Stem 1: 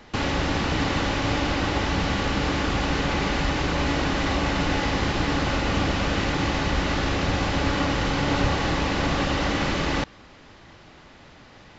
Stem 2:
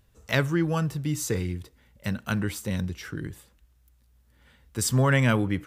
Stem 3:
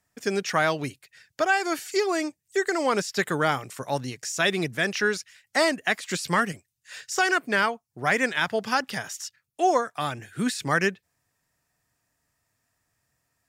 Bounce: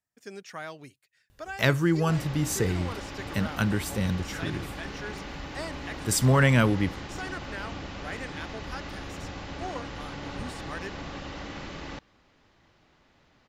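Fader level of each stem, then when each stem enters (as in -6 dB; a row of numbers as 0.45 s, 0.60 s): -14.5 dB, +1.0 dB, -16.0 dB; 1.95 s, 1.30 s, 0.00 s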